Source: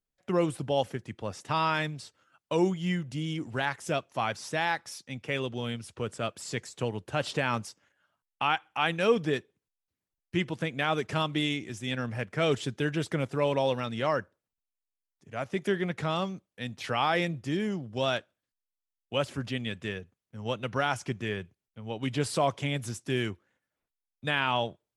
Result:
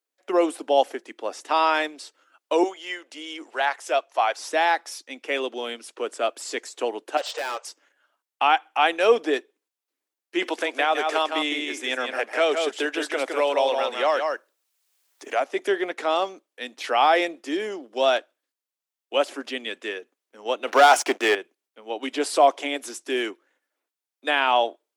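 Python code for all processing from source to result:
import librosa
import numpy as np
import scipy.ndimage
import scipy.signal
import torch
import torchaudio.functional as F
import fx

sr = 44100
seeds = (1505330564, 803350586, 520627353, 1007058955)

y = fx.chain(x, sr, fx.highpass(hz=510.0, slope=12),
    fx.high_shelf(hz=9000.0, db=-6.0), at=(2.63, 4.37))
y = fx.chain(y, sr, fx.brickwall_bandpass(low_hz=440.0, high_hz=8800.0),
    fx.overload_stage(gain_db=32.5), at=(7.17, 7.65))
y = fx.chain(y, sr, fx.peak_eq(hz=170.0, db=-10.0, octaves=1.9),
    fx.echo_single(ms=161, db=-6.0),
    fx.band_squash(depth_pct=70), at=(10.42, 15.4))
y = fx.chain(y, sr, fx.highpass(hz=340.0, slope=6),
    fx.leveller(passes=3), at=(20.67, 21.35))
y = fx.dynamic_eq(y, sr, hz=720.0, q=3.0, threshold_db=-45.0, ratio=4.0, max_db=7)
y = scipy.signal.sosfilt(scipy.signal.butter(8, 280.0, 'highpass', fs=sr, output='sos'), y)
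y = F.gain(torch.from_numpy(y), 5.5).numpy()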